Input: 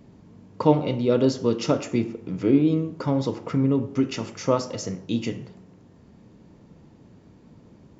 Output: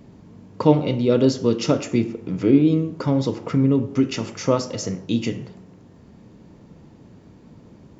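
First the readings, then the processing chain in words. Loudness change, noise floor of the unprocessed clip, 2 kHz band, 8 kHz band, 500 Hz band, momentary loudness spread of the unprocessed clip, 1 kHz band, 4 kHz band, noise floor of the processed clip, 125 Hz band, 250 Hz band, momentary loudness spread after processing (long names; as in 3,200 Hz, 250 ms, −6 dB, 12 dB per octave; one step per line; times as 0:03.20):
+3.0 dB, −53 dBFS, +3.0 dB, can't be measured, +2.5 dB, 9 LU, +0.5 dB, +3.5 dB, −49 dBFS, +4.0 dB, +3.5 dB, 10 LU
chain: dynamic equaliser 920 Hz, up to −4 dB, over −35 dBFS, Q 0.88
level +4 dB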